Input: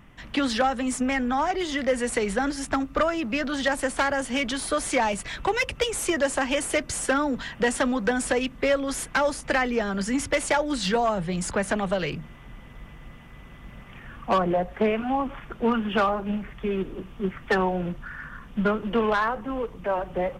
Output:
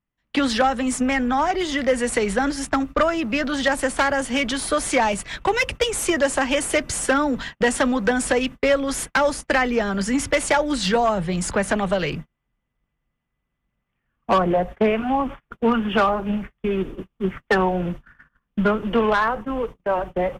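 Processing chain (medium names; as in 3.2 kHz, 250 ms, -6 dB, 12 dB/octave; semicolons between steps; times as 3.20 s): gate -34 dBFS, range -37 dB; trim +4 dB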